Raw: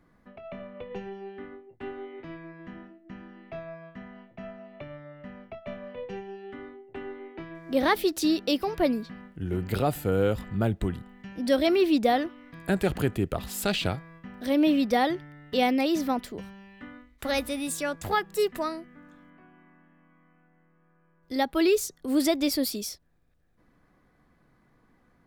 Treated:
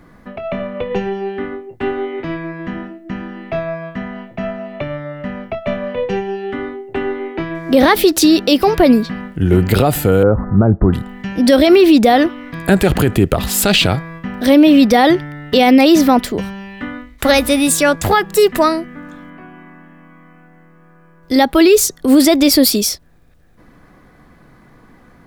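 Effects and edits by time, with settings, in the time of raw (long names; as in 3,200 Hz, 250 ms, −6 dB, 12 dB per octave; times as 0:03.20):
0:10.23–0:10.93: Butterworth low-pass 1,400 Hz
whole clip: boost into a limiter +19 dB; level −1 dB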